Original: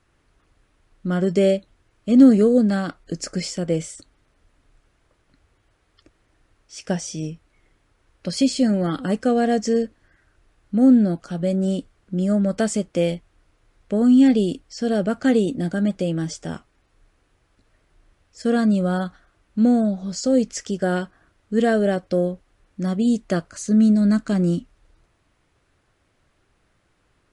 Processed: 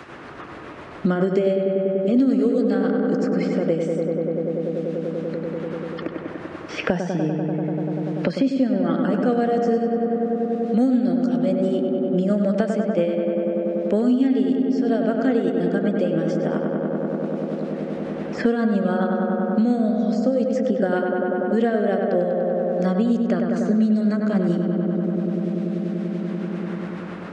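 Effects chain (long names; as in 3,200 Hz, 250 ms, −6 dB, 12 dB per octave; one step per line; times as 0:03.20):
high-pass filter 190 Hz 12 dB per octave
low-shelf EQ 380 Hz −3.5 dB
amplitude tremolo 7.3 Hz, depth 47%
head-to-tape spacing loss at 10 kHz 22 dB
feedback echo with a low-pass in the loop 97 ms, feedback 84%, low-pass 2,800 Hz, level −5 dB
multiband upward and downward compressor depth 100%
level +3.5 dB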